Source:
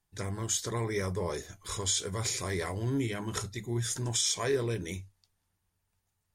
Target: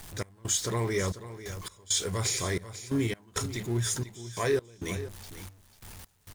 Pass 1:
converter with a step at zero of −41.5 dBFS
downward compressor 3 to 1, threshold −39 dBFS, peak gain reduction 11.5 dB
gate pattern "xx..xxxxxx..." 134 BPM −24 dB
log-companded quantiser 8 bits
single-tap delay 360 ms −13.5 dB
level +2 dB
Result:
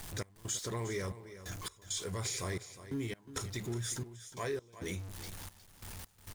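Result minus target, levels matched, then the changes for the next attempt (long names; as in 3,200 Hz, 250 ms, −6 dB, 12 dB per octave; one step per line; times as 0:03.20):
downward compressor: peak gain reduction +11.5 dB; echo 133 ms early
change: single-tap delay 493 ms −13.5 dB
remove: downward compressor 3 to 1, threshold −39 dBFS, peak gain reduction 11.5 dB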